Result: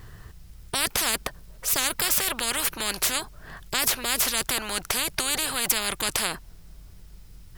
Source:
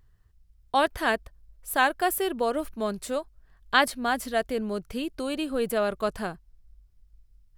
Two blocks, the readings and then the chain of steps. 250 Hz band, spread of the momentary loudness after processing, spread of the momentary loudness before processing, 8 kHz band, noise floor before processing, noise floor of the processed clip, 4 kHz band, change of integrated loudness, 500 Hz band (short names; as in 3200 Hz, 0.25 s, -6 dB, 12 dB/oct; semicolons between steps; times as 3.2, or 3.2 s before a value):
-7.5 dB, 7 LU, 9 LU, +15.5 dB, -60 dBFS, -48 dBFS, +8.5 dB, +3.0 dB, -8.5 dB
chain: spectral compressor 10:1